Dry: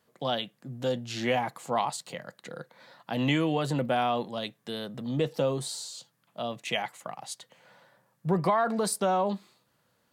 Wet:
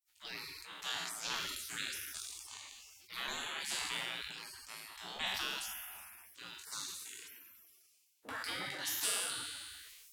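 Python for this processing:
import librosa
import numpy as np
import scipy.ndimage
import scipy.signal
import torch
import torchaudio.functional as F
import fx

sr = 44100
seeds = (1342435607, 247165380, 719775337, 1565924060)

y = fx.spec_trails(x, sr, decay_s=1.05)
y = y + 10.0 ** (-22.5 / 20.0) * np.pad(y, (int(136 * sr / 1000.0), 0))[:len(y)]
y = fx.spec_gate(y, sr, threshold_db=-25, keep='weak')
y = fx.highpass(y, sr, hz=150.0, slope=6, at=(6.49, 9.22))
y = fx.sustainer(y, sr, db_per_s=26.0)
y = F.gain(torch.from_numpy(y), 2.0).numpy()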